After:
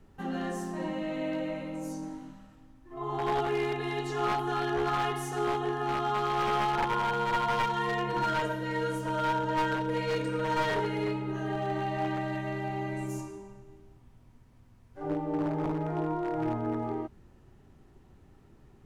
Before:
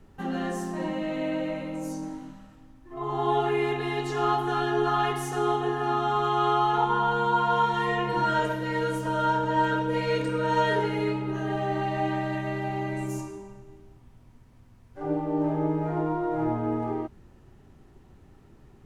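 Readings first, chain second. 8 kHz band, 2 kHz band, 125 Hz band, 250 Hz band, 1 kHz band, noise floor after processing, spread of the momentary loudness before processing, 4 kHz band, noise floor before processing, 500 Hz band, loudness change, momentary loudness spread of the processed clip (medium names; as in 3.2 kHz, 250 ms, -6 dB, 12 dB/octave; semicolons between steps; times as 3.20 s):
-2.0 dB, -3.0 dB, -4.0 dB, -4.0 dB, -4.5 dB, -58 dBFS, 10 LU, -2.5 dB, -55 dBFS, -4.0 dB, -4.0 dB, 9 LU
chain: one-sided wavefolder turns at -21 dBFS; trim -3.5 dB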